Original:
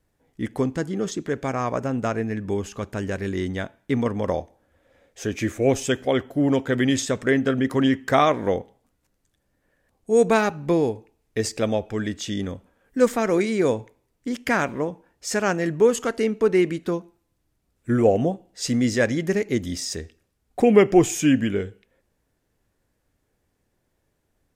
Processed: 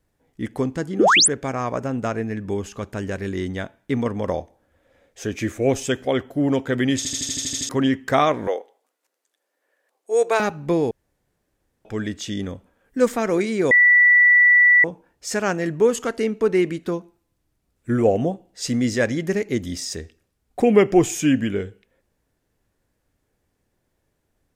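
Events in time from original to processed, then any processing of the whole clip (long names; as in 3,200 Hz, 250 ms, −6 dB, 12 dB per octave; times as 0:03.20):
0:00.99–0:01.28: sound drawn into the spectrogram rise 260–11,000 Hz −14 dBFS
0:06.97: stutter in place 0.08 s, 9 plays
0:08.47–0:10.40: high-pass filter 400 Hz 24 dB per octave
0:10.91–0:11.85: fill with room tone
0:13.71–0:14.84: beep over 1,960 Hz −10 dBFS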